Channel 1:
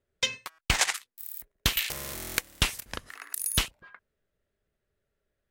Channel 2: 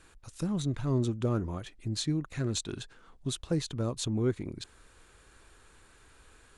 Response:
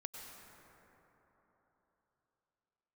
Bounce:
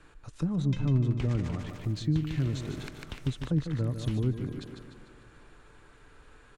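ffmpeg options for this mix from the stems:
-filter_complex "[0:a]acompressor=threshold=-37dB:ratio=2,adelay=500,volume=0.5dB,asplit=2[a][b];[b]volume=-4dB[c];[1:a]aecho=1:1:6.8:0.3,volume=2.5dB,asplit=4[d][e][f][g];[e]volume=-15.5dB[h];[f]volume=-8.5dB[i];[g]apad=whole_len=264798[j];[a][j]sidechaingate=range=-6dB:threshold=-47dB:ratio=16:detection=peak[k];[2:a]atrim=start_sample=2205[l];[h][l]afir=irnorm=-1:irlink=0[m];[c][i]amix=inputs=2:normalize=0,aecho=0:1:149|298|447|596|745|894|1043:1|0.47|0.221|0.104|0.0488|0.0229|0.0108[n];[k][d][m][n]amix=inputs=4:normalize=0,acrossover=split=9600[o][p];[p]acompressor=threshold=-47dB:ratio=4:attack=1:release=60[q];[o][q]amix=inputs=2:normalize=0,aemphasis=mode=reproduction:type=75kf,acrossover=split=260[r][s];[s]acompressor=threshold=-40dB:ratio=5[t];[r][t]amix=inputs=2:normalize=0"

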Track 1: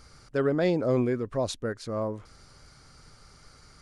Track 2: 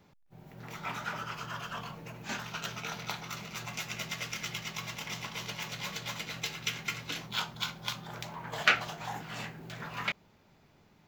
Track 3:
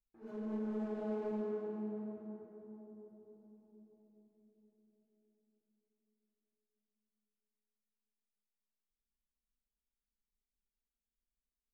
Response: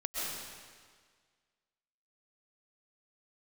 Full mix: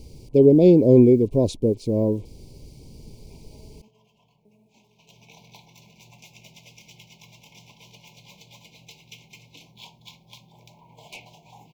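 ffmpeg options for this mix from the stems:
-filter_complex "[0:a]lowshelf=f=570:t=q:w=1.5:g=11.5,acrusher=bits=8:mix=0:aa=0.5,volume=-0.5dB[a];[1:a]equalizer=f=100:t=o:w=1.6:g=4,volume=22.5dB,asoftclip=hard,volume=-22.5dB,adelay=2450,volume=-10.5dB,afade=t=in:st=4.93:d=0.4:silence=0.237137[b];[2:a]flanger=delay=19.5:depth=5.6:speed=2.2,acrusher=bits=10:mix=0:aa=0.000001,adelay=2500,volume=-16dB,asplit=3[c][d][e];[c]atrim=end=3.88,asetpts=PTS-STARTPTS,afade=t=out:st=3.876:d=0.004:c=hsin[f];[d]atrim=start=3.88:end=4.45,asetpts=PTS-STARTPTS,volume=0[g];[e]atrim=start=4.45,asetpts=PTS-STARTPTS,afade=t=in:d=0.004:c=hsin[h];[f][g][h]concat=n=3:v=0:a=1,asplit=2[i][j];[j]volume=-12.5dB[k];[3:a]atrim=start_sample=2205[l];[k][l]afir=irnorm=-1:irlink=0[m];[a][b][i][m]amix=inputs=4:normalize=0,asuperstop=centerf=1500:order=20:qfactor=1.3"

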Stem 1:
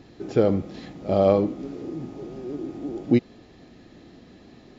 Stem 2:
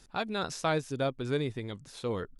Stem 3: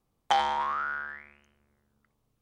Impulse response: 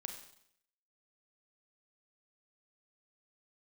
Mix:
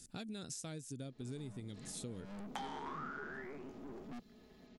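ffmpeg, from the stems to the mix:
-filter_complex "[0:a]aecho=1:1:4.7:0.83,acrossover=split=250|3000[a][b][c];[b]acompressor=threshold=-30dB:ratio=4[d];[a][d][c]amix=inputs=3:normalize=0,aeval=exprs='(tanh(56.2*val(0)+0.5)-tanh(0.5))/56.2':c=same,adelay=1000,volume=-11dB[e];[1:a]equalizer=f=125:t=o:w=1:g=8,equalizer=f=250:t=o:w=1:g=9,equalizer=f=1k:t=o:w=1:g=-11,equalizer=f=8k:t=o:w=1:g=11,volume=-7.5dB,asplit=2[f][g];[2:a]flanger=delay=16:depth=5:speed=2.6,adelay=2250,volume=-5dB[h];[g]apad=whole_len=255208[i];[e][i]sidechaincompress=threshold=-46dB:ratio=3:attack=10:release=136[j];[f][h]amix=inputs=2:normalize=0,highshelf=f=6.4k:g=11.5,acompressor=threshold=-43dB:ratio=6,volume=0dB[k];[j][k]amix=inputs=2:normalize=0"

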